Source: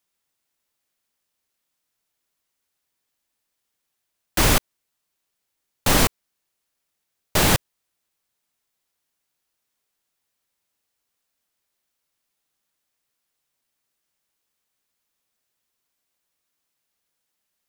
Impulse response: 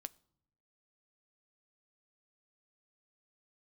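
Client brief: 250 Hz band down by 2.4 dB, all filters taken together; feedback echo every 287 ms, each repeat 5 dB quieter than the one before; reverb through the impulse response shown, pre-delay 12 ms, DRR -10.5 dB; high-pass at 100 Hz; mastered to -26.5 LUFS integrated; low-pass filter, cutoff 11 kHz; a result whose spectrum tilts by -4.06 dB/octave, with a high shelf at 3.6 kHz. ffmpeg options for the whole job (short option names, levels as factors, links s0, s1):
-filter_complex "[0:a]highpass=100,lowpass=11000,equalizer=f=250:t=o:g=-3,highshelf=f=3600:g=-4,aecho=1:1:287|574|861|1148|1435|1722|2009:0.562|0.315|0.176|0.0988|0.0553|0.031|0.0173,asplit=2[s0][s1];[1:a]atrim=start_sample=2205,adelay=12[s2];[s1][s2]afir=irnorm=-1:irlink=0,volume=5.62[s3];[s0][s3]amix=inputs=2:normalize=0,volume=0.251"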